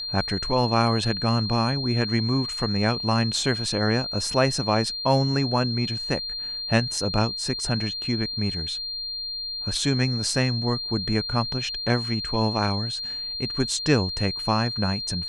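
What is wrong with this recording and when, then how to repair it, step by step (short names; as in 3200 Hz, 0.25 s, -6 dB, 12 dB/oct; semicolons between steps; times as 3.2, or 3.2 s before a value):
tone 4200 Hz -29 dBFS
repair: notch 4200 Hz, Q 30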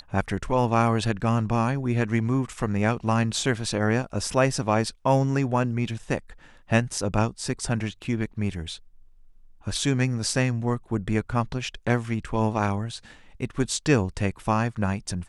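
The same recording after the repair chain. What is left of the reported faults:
none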